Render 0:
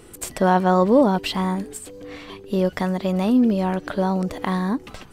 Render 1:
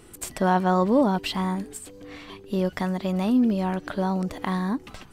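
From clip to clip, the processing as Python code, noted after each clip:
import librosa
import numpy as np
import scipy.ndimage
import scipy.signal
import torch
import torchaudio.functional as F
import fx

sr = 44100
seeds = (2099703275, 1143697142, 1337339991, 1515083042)

y = fx.peak_eq(x, sr, hz=490.0, db=-4.0, octaves=0.56)
y = y * librosa.db_to_amplitude(-3.0)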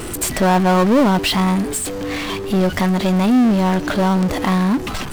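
y = fx.power_curve(x, sr, exponent=0.5)
y = y * librosa.db_to_amplitude(2.5)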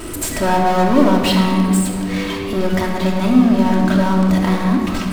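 y = fx.room_shoebox(x, sr, seeds[0], volume_m3=3600.0, walls='mixed', distance_m=2.8)
y = y * librosa.db_to_amplitude(-4.0)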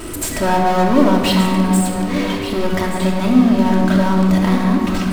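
y = x + 10.0 ** (-11.5 / 20.0) * np.pad(x, (int(1176 * sr / 1000.0), 0))[:len(x)]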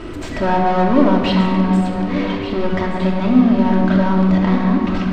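y = fx.air_absorb(x, sr, metres=200.0)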